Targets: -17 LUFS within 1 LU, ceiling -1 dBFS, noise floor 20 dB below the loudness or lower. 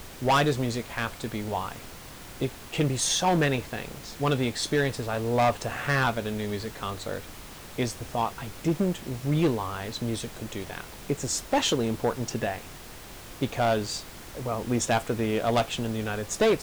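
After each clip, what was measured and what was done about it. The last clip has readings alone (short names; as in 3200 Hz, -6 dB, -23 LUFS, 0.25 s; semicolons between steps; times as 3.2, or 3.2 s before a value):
clipped 1.1%; flat tops at -17.5 dBFS; noise floor -44 dBFS; noise floor target -48 dBFS; loudness -28.0 LUFS; peak -17.5 dBFS; loudness target -17.0 LUFS
-> clip repair -17.5 dBFS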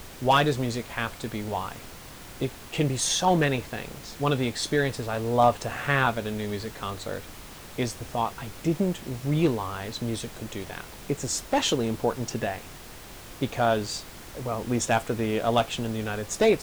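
clipped 0.0%; noise floor -44 dBFS; noise floor target -48 dBFS
-> noise print and reduce 6 dB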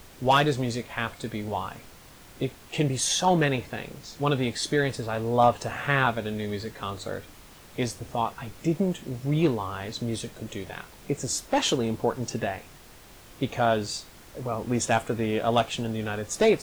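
noise floor -50 dBFS; loudness -27.5 LUFS; peak -8.5 dBFS; loudness target -17.0 LUFS
-> gain +10.5 dB; limiter -1 dBFS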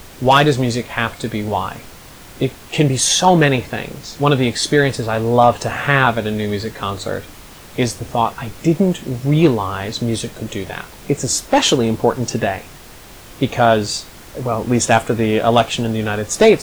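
loudness -17.0 LUFS; peak -1.0 dBFS; noise floor -39 dBFS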